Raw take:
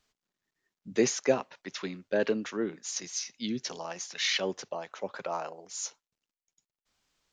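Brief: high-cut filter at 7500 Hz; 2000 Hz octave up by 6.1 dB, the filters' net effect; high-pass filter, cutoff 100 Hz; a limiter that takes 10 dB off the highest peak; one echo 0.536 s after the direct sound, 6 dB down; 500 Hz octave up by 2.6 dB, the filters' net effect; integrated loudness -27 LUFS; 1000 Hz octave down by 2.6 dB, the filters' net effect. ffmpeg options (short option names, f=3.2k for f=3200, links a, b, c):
-af "highpass=100,lowpass=7.5k,equalizer=f=500:t=o:g=4.5,equalizer=f=1k:t=o:g=-8,equalizer=f=2k:t=o:g=9,alimiter=limit=-19.5dB:level=0:latency=1,aecho=1:1:536:0.501,volume=5.5dB"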